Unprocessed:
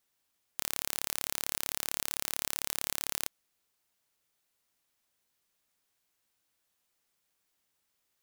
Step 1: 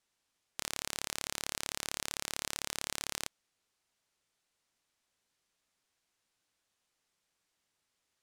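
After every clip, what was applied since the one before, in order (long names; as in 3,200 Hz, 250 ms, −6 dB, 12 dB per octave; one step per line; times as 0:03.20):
low-pass filter 8,700 Hz 12 dB per octave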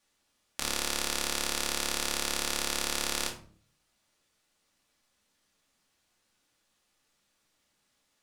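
rectangular room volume 410 cubic metres, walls furnished, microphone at 2.4 metres
level +4 dB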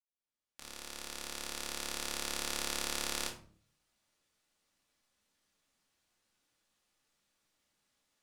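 fade in at the beginning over 2.65 s
level −5 dB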